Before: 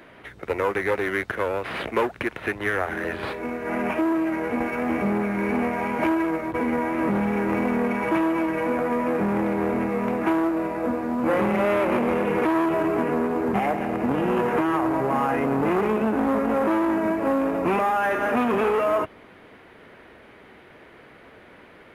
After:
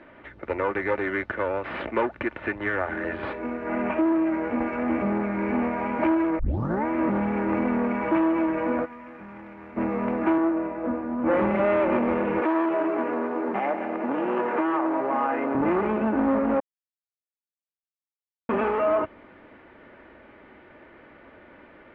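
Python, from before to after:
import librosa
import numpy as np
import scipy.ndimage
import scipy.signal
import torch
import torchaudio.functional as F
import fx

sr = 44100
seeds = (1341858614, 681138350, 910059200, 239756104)

y = fx.tone_stack(x, sr, knobs='5-5-5', at=(8.84, 9.76), fade=0.02)
y = fx.band_widen(y, sr, depth_pct=70, at=(10.38, 11.6))
y = fx.highpass(y, sr, hz=310.0, slope=12, at=(12.41, 15.55))
y = fx.edit(y, sr, fx.tape_start(start_s=6.39, length_s=0.46),
    fx.silence(start_s=16.6, length_s=1.89), tone=tone)
y = scipy.signal.sosfilt(scipy.signal.butter(2, 2300.0, 'lowpass', fs=sr, output='sos'), y)
y = y + 0.36 * np.pad(y, (int(3.4 * sr / 1000.0), 0))[:len(y)]
y = y * librosa.db_to_amplitude(-1.5)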